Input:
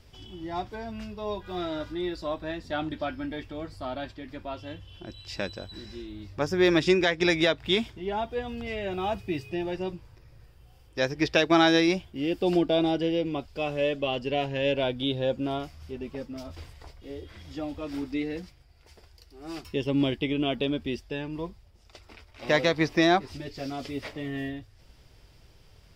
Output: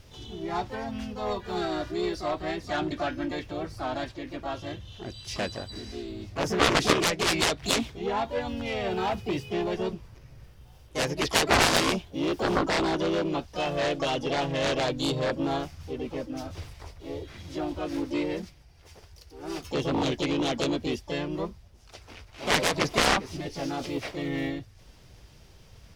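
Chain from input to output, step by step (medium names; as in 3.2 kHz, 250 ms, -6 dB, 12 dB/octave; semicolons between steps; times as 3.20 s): harmony voices +3 st -3 dB, +12 st -15 dB; Chebyshev shaper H 7 -8 dB, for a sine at -5 dBFS; trim -3.5 dB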